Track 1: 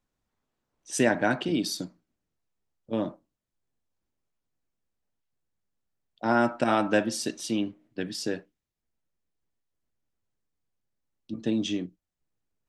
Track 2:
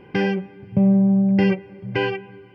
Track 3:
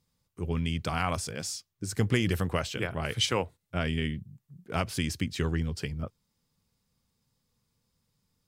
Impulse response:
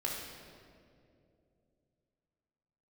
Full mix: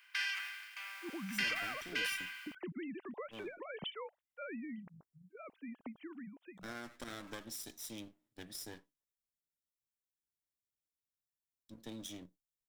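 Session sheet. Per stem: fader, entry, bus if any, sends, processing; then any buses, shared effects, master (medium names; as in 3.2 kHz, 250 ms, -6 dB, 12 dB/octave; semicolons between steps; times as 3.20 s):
-2.0 dB, 0.40 s, bus A, no send, comb filter that takes the minimum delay 0.55 ms; pre-emphasis filter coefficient 0.8; feedback comb 140 Hz, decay 0.21 s, harmonics all, mix 30%
-11.0 dB, 0.00 s, no bus, no send, spectral contrast reduction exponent 0.59; steep high-pass 1.3 kHz 36 dB/octave; decay stretcher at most 40 dB/s
4.50 s -6.5 dB -> 5.13 s -18 dB, 0.65 s, bus A, no send, formants replaced by sine waves
bus A: 0.0 dB, compression 6:1, threshold -42 dBFS, peak gain reduction 14 dB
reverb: none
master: none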